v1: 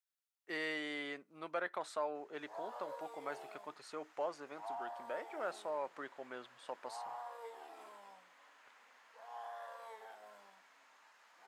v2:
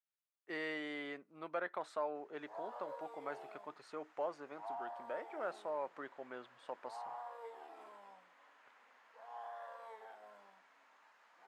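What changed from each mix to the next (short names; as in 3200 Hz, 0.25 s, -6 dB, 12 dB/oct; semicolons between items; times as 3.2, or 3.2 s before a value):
master: add high shelf 3600 Hz -11 dB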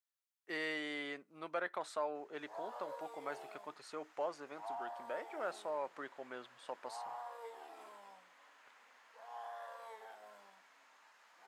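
master: add high shelf 3600 Hz +11 dB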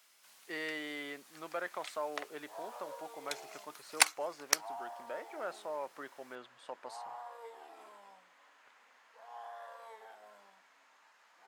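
first sound: unmuted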